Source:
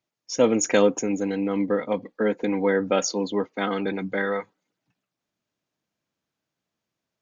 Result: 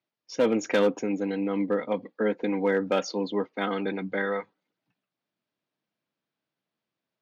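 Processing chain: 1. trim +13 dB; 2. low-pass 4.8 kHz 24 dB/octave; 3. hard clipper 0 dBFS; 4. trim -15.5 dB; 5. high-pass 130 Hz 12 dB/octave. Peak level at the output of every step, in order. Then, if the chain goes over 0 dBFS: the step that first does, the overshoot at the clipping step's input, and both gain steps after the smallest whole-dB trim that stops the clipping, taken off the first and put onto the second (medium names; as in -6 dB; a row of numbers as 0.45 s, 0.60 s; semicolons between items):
+5.5 dBFS, +5.5 dBFS, 0.0 dBFS, -15.5 dBFS, -12.5 dBFS; step 1, 5.5 dB; step 1 +7 dB, step 4 -9.5 dB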